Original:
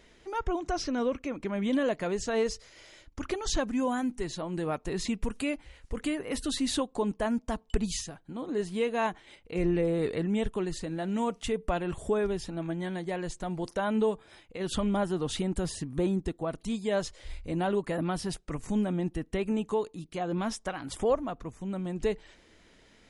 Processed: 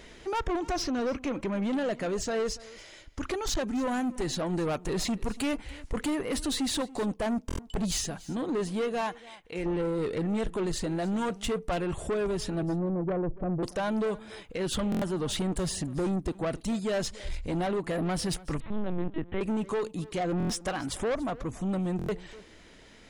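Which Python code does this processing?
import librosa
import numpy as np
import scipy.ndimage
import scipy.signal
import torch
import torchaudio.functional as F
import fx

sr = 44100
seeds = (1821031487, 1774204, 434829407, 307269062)

y = fx.low_shelf(x, sr, hz=450.0, db=-9.0, at=(9.01, 9.66))
y = fx.steep_lowpass(y, sr, hz=660.0, slope=48, at=(12.62, 13.63))
y = fx.rider(y, sr, range_db=4, speed_s=0.5)
y = 10.0 ** (-31.0 / 20.0) * np.tanh(y / 10.0 ** (-31.0 / 20.0))
y = y + 10.0 ** (-20.0 / 20.0) * np.pad(y, (int(285 * sr / 1000.0), 0))[:len(y)]
y = fx.lpc_vocoder(y, sr, seeds[0], excitation='pitch_kept', order=10, at=(18.6, 19.41))
y = fx.buffer_glitch(y, sr, at_s=(7.47, 14.9, 20.38, 21.97), block=1024, repeats=4)
y = y * 10.0 ** (5.5 / 20.0)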